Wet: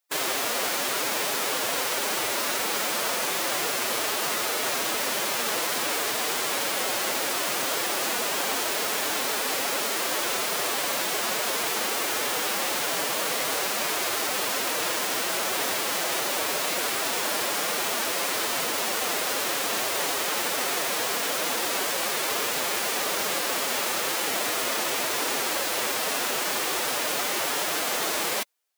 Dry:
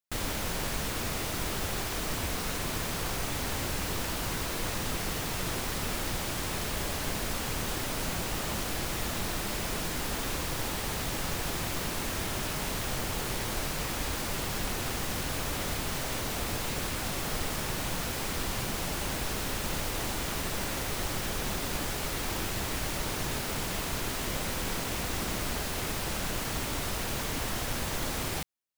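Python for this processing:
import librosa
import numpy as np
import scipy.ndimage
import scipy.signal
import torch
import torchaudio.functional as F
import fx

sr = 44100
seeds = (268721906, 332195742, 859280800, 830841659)

y = scipy.signal.sosfilt(scipy.signal.butter(2, 400.0, 'highpass', fs=sr, output='sos'), x)
y = fx.pitch_keep_formants(y, sr, semitones=4.5)
y = y * librosa.db_to_amplitude(9.0)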